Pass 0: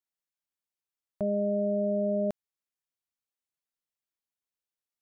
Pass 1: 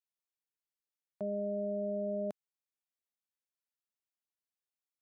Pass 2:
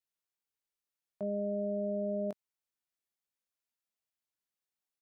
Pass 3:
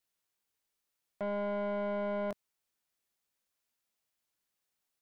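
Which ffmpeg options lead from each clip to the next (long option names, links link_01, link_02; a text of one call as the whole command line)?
ffmpeg -i in.wav -af "highpass=170,volume=-7dB" out.wav
ffmpeg -i in.wav -filter_complex "[0:a]asplit=2[link_01][link_02];[link_02]adelay=20,volume=-9dB[link_03];[link_01][link_03]amix=inputs=2:normalize=0" out.wav
ffmpeg -i in.wav -af "asoftclip=type=tanh:threshold=-38.5dB,volume=7dB" out.wav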